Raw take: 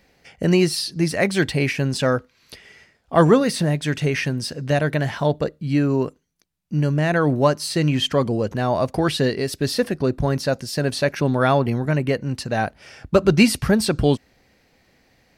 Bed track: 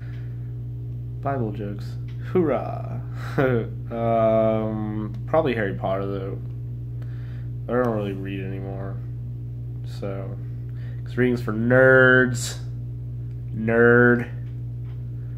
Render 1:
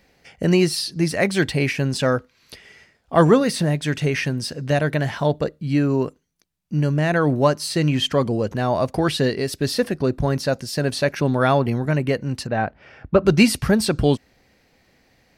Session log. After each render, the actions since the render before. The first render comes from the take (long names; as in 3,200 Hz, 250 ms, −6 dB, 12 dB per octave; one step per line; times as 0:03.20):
0:12.47–0:13.26: low-pass filter 2,300 Hz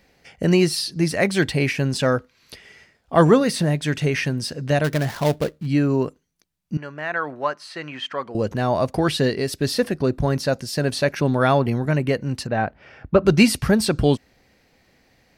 0:04.84–0:05.67: gap after every zero crossing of 0.15 ms
0:06.77–0:08.35: resonant band-pass 1,400 Hz, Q 1.2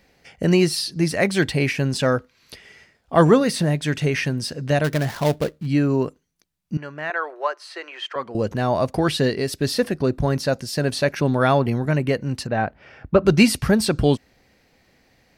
0:07.10–0:08.16: elliptic high-pass filter 350 Hz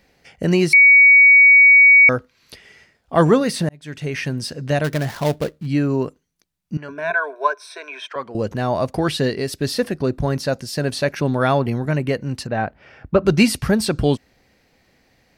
0:00.73–0:02.09: beep over 2,250 Hz −6 dBFS
0:03.69–0:04.35: fade in
0:06.88–0:08.08: EQ curve with evenly spaced ripples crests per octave 1.6, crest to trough 18 dB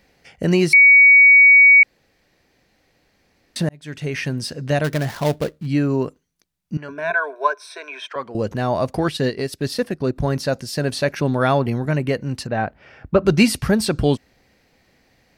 0:01.83–0:03.56: fill with room tone
0:08.98–0:10.16: transient designer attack −2 dB, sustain −7 dB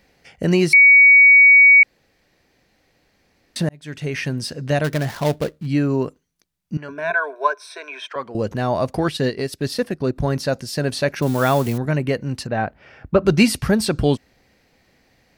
0:11.22–0:11.78: spike at every zero crossing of −21.5 dBFS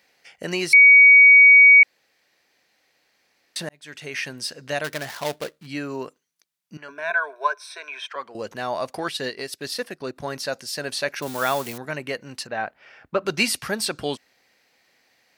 high-pass filter 1,100 Hz 6 dB per octave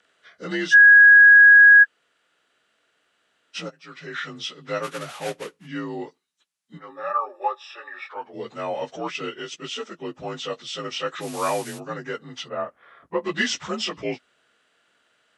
partials spread apart or drawn together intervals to 86%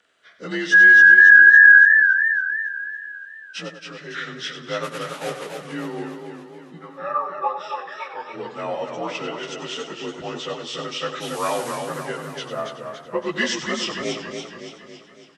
repeating echo 96 ms, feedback 33%, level −10 dB
feedback echo with a swinging delay time 280 ms, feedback 55%, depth 97 cents, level −6 dB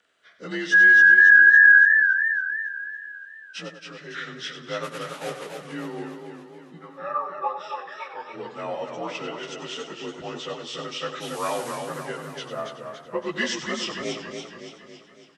level −3.5 dB